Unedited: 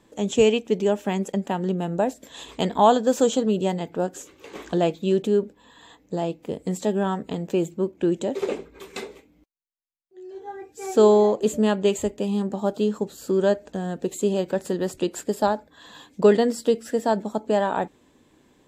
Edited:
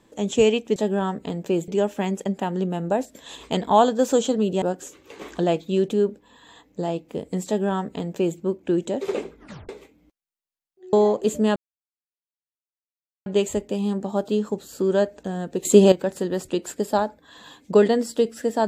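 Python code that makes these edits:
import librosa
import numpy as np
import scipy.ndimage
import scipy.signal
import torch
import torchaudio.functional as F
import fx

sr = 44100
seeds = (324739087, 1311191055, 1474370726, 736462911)

y = fx.edit(x, sr, fx.cut(start_s=3.7, length_s=0.26),
    fx.duplicate(start_s=6.8, length_s=0.92, to_s=0.76),
    fx.tape_stop(start_s=8.7, length_s=0.33),
    fx.cut(start_s=10.27, length_s=0.85),
    fx.insert_silence(at_s=11.75, length_s=1.7),
    fx.clip_gain(start_s=14.14, length_s=0.27, db=10.0), tone=tone)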